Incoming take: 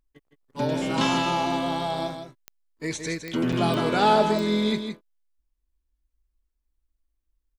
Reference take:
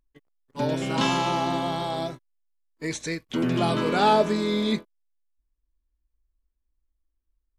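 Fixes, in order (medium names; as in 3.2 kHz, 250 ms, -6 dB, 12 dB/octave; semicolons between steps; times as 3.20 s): de-click; interpolate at 2.79/3.52 s, 6.2 ms; inverse comb 162 ms -8 dB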